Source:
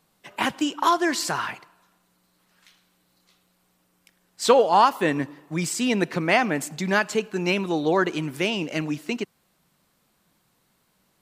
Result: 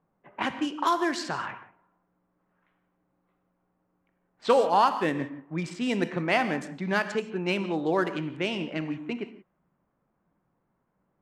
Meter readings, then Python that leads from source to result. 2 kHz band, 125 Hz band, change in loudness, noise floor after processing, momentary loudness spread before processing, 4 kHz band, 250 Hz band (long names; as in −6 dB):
−5.0 dB, −4.0 dB, −4.5 dB, −76 dBFS, 11 LU, −6.5 dB, −4.0 dB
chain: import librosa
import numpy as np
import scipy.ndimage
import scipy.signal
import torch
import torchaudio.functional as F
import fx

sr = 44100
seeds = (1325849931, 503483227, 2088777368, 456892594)

y = fx.wiener(x, sr, points=9)
y = fx.rev_gated(y, sr, seeds[0], gate_ms=200, shape='flat', drr_db=10.0)
y = fx.env_lowpass(y, sr, base_hz=1300.0, full_db=-16.5)
y = F.gain(torch.from_numpy(y), -4.5).numpy()